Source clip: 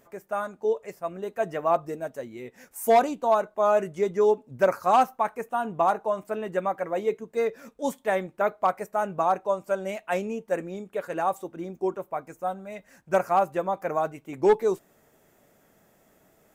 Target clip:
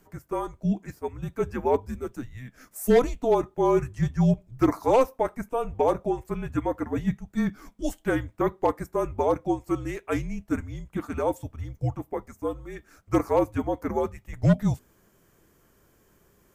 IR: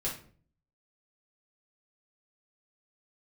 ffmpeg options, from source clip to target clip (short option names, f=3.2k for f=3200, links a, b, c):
-af "afreqshift=-250"